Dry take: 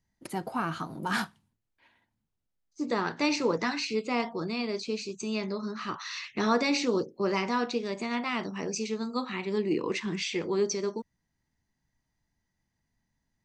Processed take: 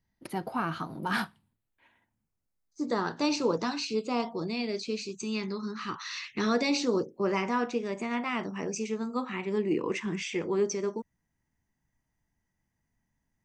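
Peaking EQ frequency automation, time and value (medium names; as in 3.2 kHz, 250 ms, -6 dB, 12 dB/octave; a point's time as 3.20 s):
peaking EQ -12.5 dB 0.47 oct
1.06 s 7.5 kHz
3.34 s 2 kHz
4.19 s 2 kHz
5.18 s 620 Hz
6.38 s 620 Hz
7.04 s 4.2 kHz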